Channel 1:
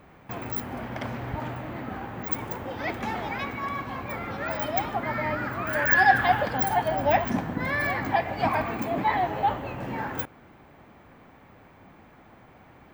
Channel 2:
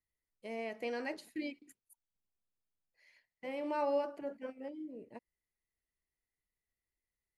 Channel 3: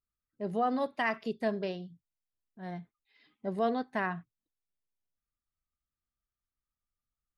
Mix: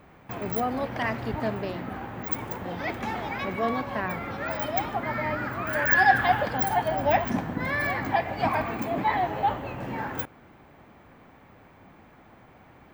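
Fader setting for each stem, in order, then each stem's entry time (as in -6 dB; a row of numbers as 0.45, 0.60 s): -0.5, -8.0, +1.0 dB; 0.00, 0.00, 0.00 s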